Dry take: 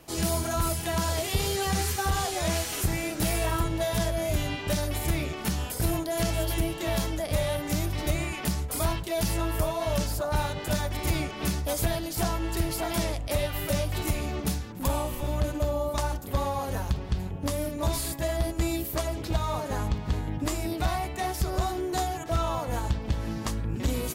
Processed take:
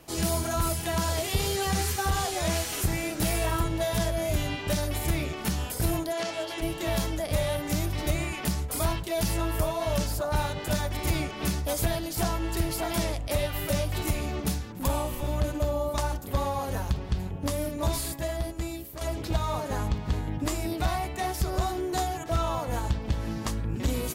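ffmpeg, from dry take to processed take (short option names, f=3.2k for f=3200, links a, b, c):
-filter_complex "[0:a]asplit=3[a][b][c];[a]afade=t=out:st=6.12:d=0.02[d];[b]highpass=380,lowpass=5.6k,afade=t=in:st=6.12:d=0.02,afade=t=out:st=6.61:d=0.02[e];[c]afade=t=in:st=6.61:d=0.02[f];[d][e][f]amix=inputs=3:normalize=0,asplit=2[g][h];[g]atrim=end=19.01,asetpts=PTS-STARTPTS,afade=t=out:st=17.9:d=1.11:silence=0.266073[i];[h]atrim=start=19.01,asetpts=PTS-STARTPTS,afade=t=in:d=0.004:c=hsin:silence=0.266073[j];[i][j]concat=n=2:v=0:a=1"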